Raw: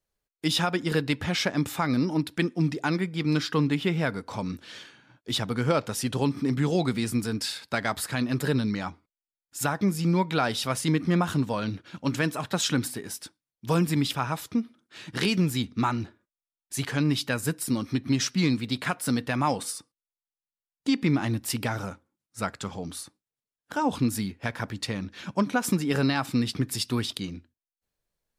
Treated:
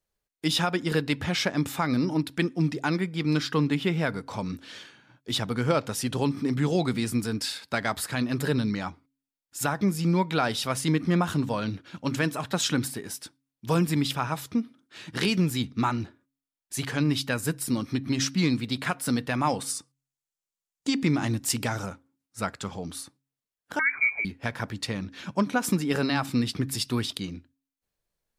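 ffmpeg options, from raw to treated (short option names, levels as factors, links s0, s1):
-filter_complex "[0:a]asettb=1/sr,asplit=3[s0][s1][s2];[s0]atrim=end=19.704[s3];[s1]atrim=start=19.7:end=21.86,asetpts=PTS-STARTPTS,afade=t=in:d=0.004:c=qsin,afade=t=out:st=2.156:d=0.004:c=qsin,equalizer=f=7100:t=o:w=0.77:g=7.5[s4];[s2]atrim=start=21.856[s5];[s3][s4]acrossfade=d=0.004:c1=hsin:c2=qsin[s6];[s6][s5]acrossfade=d=0.004:c1=qsin:c2=hsin,asettb=1/sr,asplit=3[s7][s8][s9];[s7]atrim=end=23.794[s10];[s8]atrim=start=23.79:end=24.25,asetpts=PTS-STARTPTS,afade=t=in:d=0.004:c=qsin,afade=t=out:st=0.456:d=0.004:c=qsin,lowpass=f=2100:t=q:w=0.5098,lowpass=f=2100:t=q:w=0.6013,lowpass=f=2100:t=q:w=0.9,lowpass=f=2100:t=q:w=2.563,afreqshift=-2500[s11];[s9]atrim=start=24.246[s12];[s10][s11]acrossfade=d=0.004:c1=hsin:c2=qsin[s13];[s13][s12]acrossfade=d=0.004:c1=qsin:c2=hsin,bandreject=f=135.7:t=h:w=4,bandreject=f=271.4:t=h:w=4"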